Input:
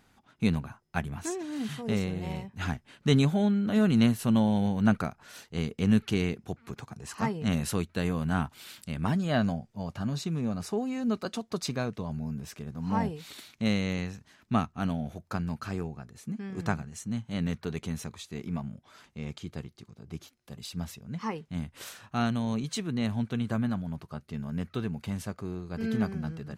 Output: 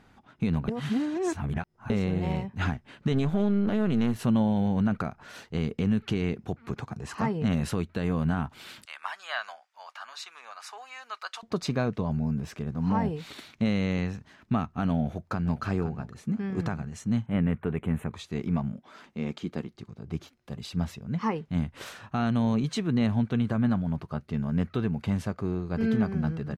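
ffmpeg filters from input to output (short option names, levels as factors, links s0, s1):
-filter_complex "[0:a]asettb=1/sr,asplit=3[s0][s1][s2];[s0]atrim=end=3.124[s3];[s1]atrim=start=3.12:end=4.16,asetpts=PTS-STARTPTS,afade=t=in:d=0.004:c=qsin,afade=t=out:st=1.036:d=0.004:c=qsin,aeval=exprs='if(lt(val(0),0),0.447*val(0),val(0))':c=same[s4];[s2]atrim=start=4.156[s5];[s3][s4]acrossfade=d=0.004:c1=hsin:c2=qsin[s6];[s6][s5]acrossfade=d=0.004:c1=qsin:c2=hsin,asettb=1/sr,asplit=3[s7][s8][s9];[s7]atrim=end=8.854[s10];[s8]atrim=start=8.85:end=11.43,asetpts=PTS-STARTPTS,afade=t=in:d=0.004:c=qsin,afade=t=out:st=2.576:d=0.004:c=qsin,highpass=f=1000:w=0.5412,highpass=f=1000:w=1.3066[s11];[s9]atrim=start=11.426[s12];[s10][s11]acrossfade=d=0.004:c1=hsin:c2=qsin[s13];[s13][s12]acrossfade=d=0.004:c1=qsin:c2=hsin,asplit=2[s14][s15];[s15]afade=t=in:st=14.94:d=0.01,afade=t=out:st=15.62:d=0.01,aecho=0:1:510|1020:0.16788|0.0335761[s16];[s14][s16]amix=inputs=2:normalize=0,asettb=1/sr,asplit=3[s17][s18][s19];[s17]atrim=end=17.264[s20];[s18]atrim=start=17.26:end=18.13,asetpts=PTS-STARTPTS,afade=t=in:d=0.004:c=qsin,afade=t=out:st=0.866:d=0.004:c=qsin,asuperstop=centerf=5100:order=4:qfactor=0.76[s21];[s19]atrim=start=18.126[s22];[s20][s21]acrossfade=d=0.004:c1=hsin:c2=qsin[s23];[s23][s22]acrossfade=d=0.004:c1=qsin:c2=hsin,asettb=1/sr,asplit=3[s24][s25][s26];[s24]atrim=end=18.724[s27];[s25]atrim=start=18.72:end=19.73,asetpts=PTS-STARTPTS,afade=t=in:d=0.004:c=qsin,afade=t=out:st=1.006:d=0.004:c=qsin,lowshelf=f=150:t=q:w=1.5:g=-9.5[s28];[s26]atrim=start=19.726[s29];[s27][s28]acrossfade=d=0.004:c1=hsin:c2=qsin[s30];[s30][s29]acrossfade=d=0.004:c1=qsin:c2=hsin,asplit=3[s31][s32][s33];[s31]atrim=end=0.682[s34];[s32]atrim=start=0.678:end=1.902,asetpts=PTS-STARTPTS,areverse[s35];[s33]atrim=start=1.898[s36];[s34][s35]acrossfade=d=0.004:c1=hsin:c2=hsin[s37];[s37][s36]acrossfade=d=0.004:c1=hsin:c2=hsin,alimiter=limit=0.0708:level=0:latency=1:release=147,lowpass=f=2300:p=1,volume=2.11"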